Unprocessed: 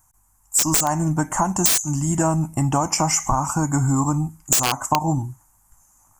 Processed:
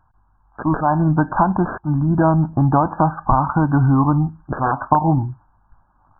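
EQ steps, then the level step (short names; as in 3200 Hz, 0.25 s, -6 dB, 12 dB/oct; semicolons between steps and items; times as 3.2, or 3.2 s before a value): brick-wall FIR low-pass 1700 Hz; +5.0 dB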